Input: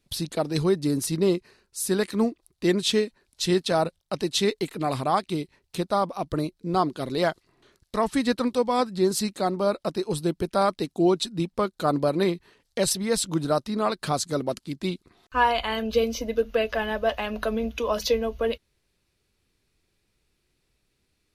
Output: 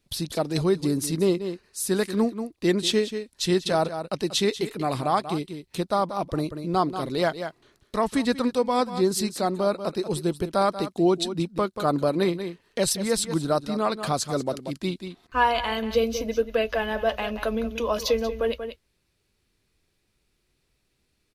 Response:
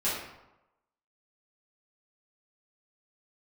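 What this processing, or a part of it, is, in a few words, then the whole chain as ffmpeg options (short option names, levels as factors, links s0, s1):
ducked delay: -filter_complex "[0:a]asplit=3[s0][s1][s2];[s1]adelay=186,volume=0.376[s3];[s2]apad=whole_len=949377[s4];[s3][s4]sidechaincompress=threshold=0.0355:ratio=8:attack=16:release=154[s5];[s0][s5]amix=inputs=2:normalize=0"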